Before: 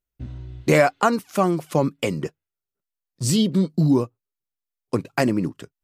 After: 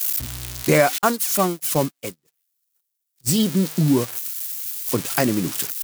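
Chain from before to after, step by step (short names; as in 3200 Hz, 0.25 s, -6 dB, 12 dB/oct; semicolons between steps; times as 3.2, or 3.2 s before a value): switching spikes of -14 dBFS; 0.98–3.4 gate -18 dBFS, range -48 dB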